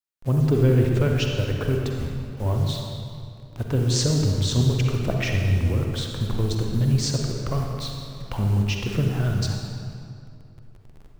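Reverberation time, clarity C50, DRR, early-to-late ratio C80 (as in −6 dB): 2.5 s, 1.5 dB, 1.0 dB, 3.5 dB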